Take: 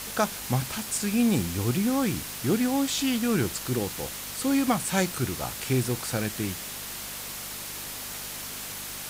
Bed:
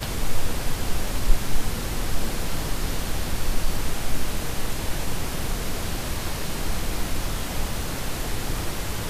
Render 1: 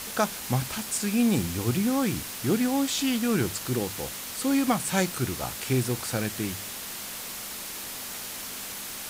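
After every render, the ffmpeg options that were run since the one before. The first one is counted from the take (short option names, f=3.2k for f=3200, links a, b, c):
-af "bandreject=f=50:t=h:w=4,bandreject=f=100:t=h:w=4,bandreject=f=150:t=h:w=4"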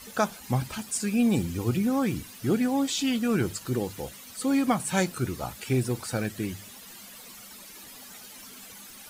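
-af "afftdn=nr=13:nf=-37"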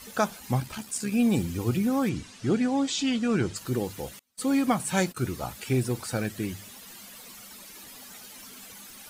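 -filter_complex "[0:a]asettb=1/sr,asplit=3[a][b][c];[a]atrim=end=0.604[d];[b]atrim=start=0.6:end=1.12,asetpts=PTS-STARTPTS,afade=t=in:d=0.004:c=qsin,afade=t=out:st=0.516:d=0.004:c=qsin,tremolo=f=69:d=0.462[e];[c]atrim=start=1.116[f];[d][e]acrossfade=d=0.004:c1=hsin:c2=qsin[g];[g][f]acrossfade=d=0.004:c1=qsin:c2=hsin,asettb=1/sr,asplit=3[h][i][j];[h]atrim=end=2.094[k];[i]atrim=start=2.09:end=3.56,asetpts=PTS-STARTPTS,afade=t=in:d=0.004:c=qsin,afade=t=out:st=1.466:d=0.004:c=qsin,lowpass=f=8k:w=0.5412,lowpass=f=8k:w=1.3066[l];[j]atrim=start=3.556[m];[k][l]acrossfade=d=0.004:c1=hsin:c2=qsin[n];[n][m]acrossfade=d=0.004:c1=qsin:c2=hsin,asettb=1/sr,asplit=3[o][p][q];[o]atrim=end=4.194[r];[p]atrim=start=4.19:end=5.31,asetpts=PTS-STARTPTS,afade=t=in:d=0.004:c=qsin,afade=t=out:st=1.116:d=0.004:c=qsin,agate=range=-31dB:threshold=-40dB:ratio=16:release=100:detection=peak[s];[q]atrim=start=5.306[t];[r][s]acrossfade=d=0.004:c1=hsin:c2=qsin[u];[u][t]acrossfade=d=0.004:c1=qsin:c2=hsin"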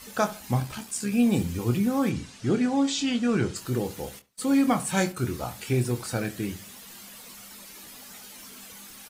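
-filter_complex "[0:a]asplit=2[a][b];[b]adelay=25,volume=-8.5dB[c];[a][c]amix=inputs=2:normalize=0,asplit=2[d][e];[e]adelay=69,lowpass=f=2k:p=1,volume=-15.5dB,asplit=2[f][g];[g]adelay=69,lowpass=f=2k:p=1,volume=0.27,asplit=2[h][i];[i]adelay=69,lowpass=f=2k:p=1,volume=0.27[j];[d][f][h][j]amix=inputs=4:normalize=0"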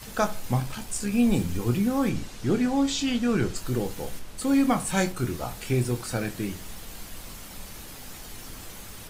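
-filter_complex "[1:a]volume=-16dB[a];[0:a][a]amix=inputs=2:normalize=0"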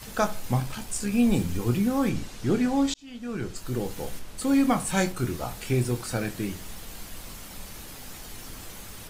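-filter_complex "[0:a]asplit=2[a][b];[a]atrim=end=2.94,asetpts=PTS-STARTPTS,afade=t=out:st=2.936:d=0.004:c=hsin[c];[b]atrim=start=2.94,asetpts=PTS-STARTPTS,afade=t=in:d=1.06[d];[c][d]concat=n=2:v=0:a=1"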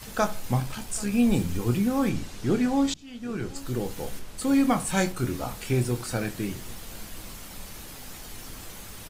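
-af "aecho=1:1:783:0.0794"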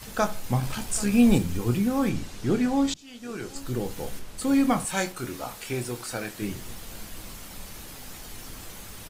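-filter_complex "[0:a]asettb=1/sr,asplit=3[a][b][c];[a]atrim=end=2.964[d];[b]atrim=start=2.96:end=3.55,asetpts=PTS-STARTPTS,afade=t=in:d=0.004:c=qsin,afade=t=out:st=0.586:d=0.004:c=qsin,bass=f=250:g=-9,treble=f=4k:g=6[e];[c]atrim=start=3.546[f];[d][e]acrossfade=d=0.004:c1=hsin:c2=qsin[g];[g][f]acrossfade=d=0.004:c1=qsin:c2=hsin,asettb=1/sr,asplit=3[h][i][j];[h]atrim=end=4.854[k];[i]atrim=start=4.85:end=6.42,asetpts=PTS-STARTPTS,afade=t=in:d=0.004:c=qsin,afade=t=out:st=1.566:d=0.004:c=qsin,lowshelf=f=260:g=-11.5[l];[j]atrim=start=6.416[m];[k][l]acrossfade=d=0.004:c1=hsin:c2=qsin[n];[n][m]acrossfade=d=0.004:c1=qsin:c2=hsin,asplit=3[o][p][q];[o]atrim=end=0.632[r];[p]atrim=start=0.628:end=1.382,asetpts=PTS-STARTPTS,volume=3.5dB[s];[q]atrim=start=1.378[t];[r][s]acrossfade=d=0.004:c1=hsin:c2=hsin[u];[u][t]acrossfade=d=0.004:c1=hsin:c2=hsin"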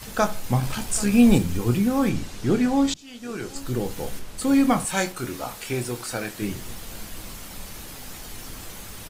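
-af "volume=3dB"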